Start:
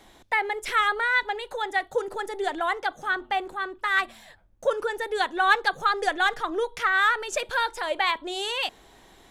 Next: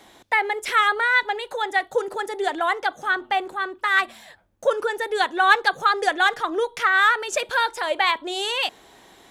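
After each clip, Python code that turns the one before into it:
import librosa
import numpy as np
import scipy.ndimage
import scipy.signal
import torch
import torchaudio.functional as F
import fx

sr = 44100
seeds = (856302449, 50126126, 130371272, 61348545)

y = fx.highpass(x, sr, hz=170.0, slope=6)
y = y * librosa.db_to_amplitude(4.0)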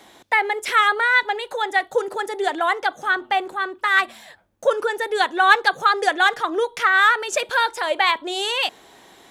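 y = fx.low_shelf(x, sr, hz=66.0, db=-9.5)
y = y * librosa.db_to_amplitude(2.0)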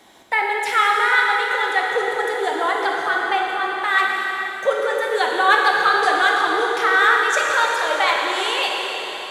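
y = fx.rev_plate(x, sr, seeds[0], rt60_s=4.4, hf_ratio=0.95, predelay_ms=0, drr_db=-2.0)
y = y * librosa.db_to_amplitude(-2.5)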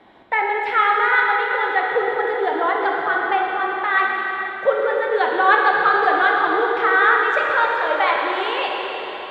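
y = fx.air_absorb(x, sr, metres=440.0)
y = y * librosa.db_to_amplitude(3.0)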